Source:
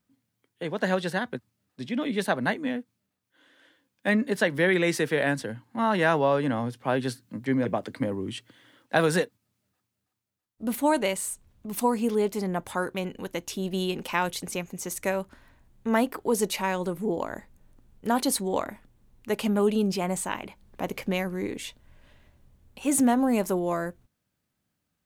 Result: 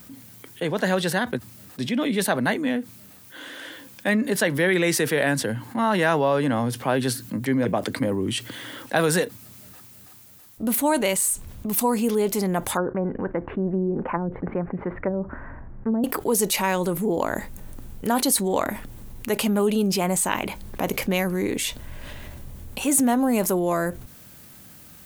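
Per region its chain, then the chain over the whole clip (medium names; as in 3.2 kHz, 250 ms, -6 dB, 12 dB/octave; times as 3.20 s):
12.77–16.04 s: low-pass that closes with the level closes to 300 Hz, closed at -22.5 dBFS + steep low-pass 1.8 kHz
whole clip: treble shelf 9.1 kHz +11 dB; level flattener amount 50%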